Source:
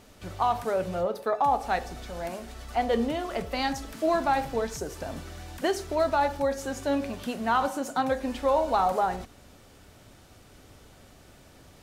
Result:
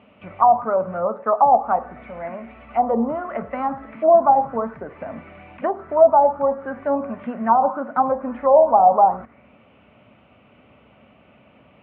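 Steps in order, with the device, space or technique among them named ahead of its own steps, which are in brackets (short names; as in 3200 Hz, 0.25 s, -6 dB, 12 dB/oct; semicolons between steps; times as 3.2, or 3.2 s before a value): envelope filter bass rig (envelope low-pass 710–2900 Hz down, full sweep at -19.5 dBFS; speaker cabinet 72–2400 Hz, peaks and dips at 89 Hz -9 dB, 220 Hz +8 dB, 360 Hz -4 dB, 600 Hz +6 dB, 1100 Hz +4 dB, 1700 Hz -9 dB)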